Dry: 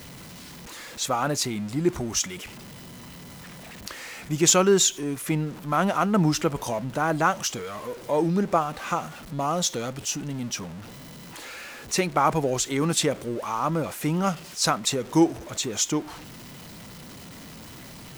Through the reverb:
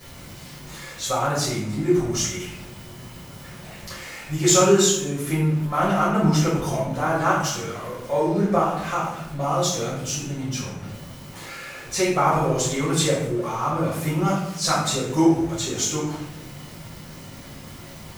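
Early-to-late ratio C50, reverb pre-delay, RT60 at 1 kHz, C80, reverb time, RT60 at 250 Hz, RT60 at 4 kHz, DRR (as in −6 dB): 2.0 dB, 6 ms, 0.80 s, 5.0 dB, 0.85 s, 1.3 s, 0.55 s, −9.0 dB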